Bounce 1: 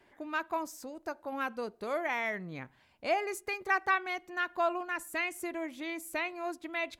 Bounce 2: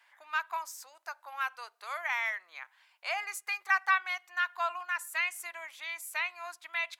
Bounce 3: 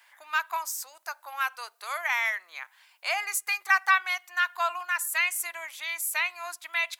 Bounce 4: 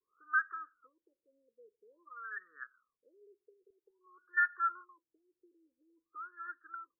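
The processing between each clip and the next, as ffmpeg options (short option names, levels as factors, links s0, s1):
-af "highpass=f=970:w=0.5412,highpass=f=970:w=1.3066,volume=1.41"
-af "crystalizer=i=1.5:c=0,volume=1.58"
-af "alimiter=limit=0.141:level=0:latency=1:release=204,asuperstop=centerf=770:order=12:qfactor=1,afftfilt=real='re*lt(b*sr/1024,560*pow(1900/560,0.5+0.5*sin(2*PI*0.5*pts/sr)))':imag='im*lt(b*sr/1024,560*pow(1900/560,0.5+0.5*sin(2*PI*0.5*pts/sr)))':win_size=1024:overlap=0.75"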